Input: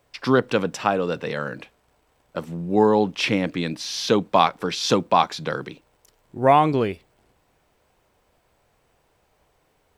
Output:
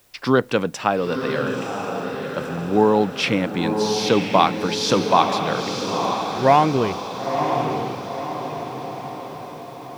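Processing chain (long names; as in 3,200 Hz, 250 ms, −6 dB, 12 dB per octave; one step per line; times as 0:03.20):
bit-depth reduction 10 bits, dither triangular
feedback delay with all-pass diffusion 982 ms, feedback 53%, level −5 dB
level +1 dB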